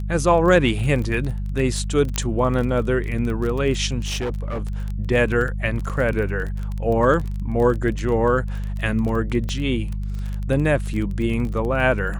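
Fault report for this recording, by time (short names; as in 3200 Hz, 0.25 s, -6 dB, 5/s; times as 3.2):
crackle 21/s -26 dBFS
hum 50 Hz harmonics 4 -26 dBFS
2.16 pop -7 dBFS
4.04–4.62 clipped -21.5 dBFS
5.89–5.9 gap 7.6 ms
9.49 pop -15 dBFS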